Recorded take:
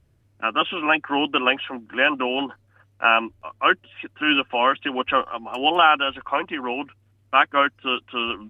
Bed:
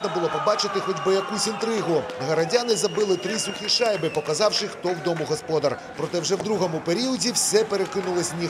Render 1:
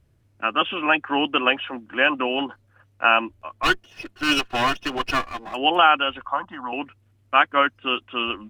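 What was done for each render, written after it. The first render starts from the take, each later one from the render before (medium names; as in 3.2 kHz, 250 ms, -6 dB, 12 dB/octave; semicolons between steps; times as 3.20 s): 3.63–5.54 s: comb filter that takes the minimum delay 2.8 ms; 6.26–6.73 s: static phaser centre 1 kHz, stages 4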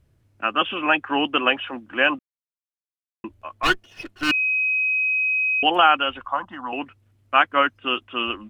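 2.19–3.24 s: mute; 4.31–5.63 s: bleep 2.53 kHz -18.5 dBFS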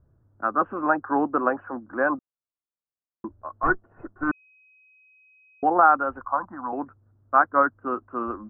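steep low-pass 1.5 kHz 48 dB/octave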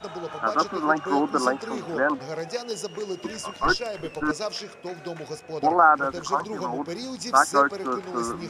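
add bed -10 dB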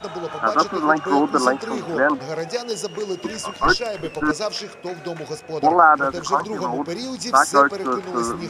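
trim +5 dB; peak limiter -2 dBFS, peak gain reduction 2.5 dB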